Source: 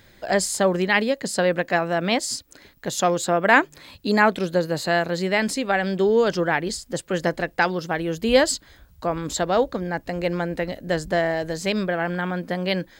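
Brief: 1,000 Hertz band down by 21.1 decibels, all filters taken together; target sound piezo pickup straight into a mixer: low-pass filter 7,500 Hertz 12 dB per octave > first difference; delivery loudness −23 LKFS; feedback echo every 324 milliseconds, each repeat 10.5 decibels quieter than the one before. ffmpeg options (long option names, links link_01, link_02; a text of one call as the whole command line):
ffmpeg -i in.wav -af "lowpass=7500,aderivative,equalizer=frequency=1000:width_type=o:gain=-4.5,aecho=1:1:324|648|972:0.299|0.0896|0.0269,volume=12.5dB" out.wav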